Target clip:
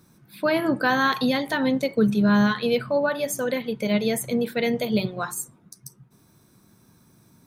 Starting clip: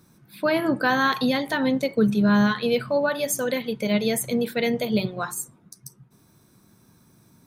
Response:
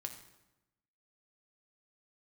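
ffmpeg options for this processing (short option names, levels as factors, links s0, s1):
-filter_complex "[0:a]asplit=3[s0][s1][s2];[s0]afade=t=out:st=2.76:d=0.02[s3];[s1]adynamicequalizer=threshold=0.0112:dfrequency=2600:dqfactor=0.7:tfrequency=2600:tqfactor=0.7:attack=5:release=100:ratio=0.375:range=2:mode=cutabove:tftype=highshelf,afade=t=in:st=2.76:d=0.02,afade=t=out:st=4.67:d=0.02[s4];[s2]afade=t=in:st=4.67:d=0.02[s5];[s3][s4][s5]amix=inputs=3:normalize=0"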